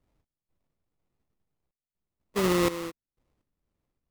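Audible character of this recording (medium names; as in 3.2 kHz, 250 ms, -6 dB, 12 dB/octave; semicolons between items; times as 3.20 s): random-step tremolo 4.1 Hz, depth 95%; phasing stages 12, 1.9 Hz, lowest notch 650–2400 Hz; aliases and images of a low sample rate 1.6 kHz, jitter 20%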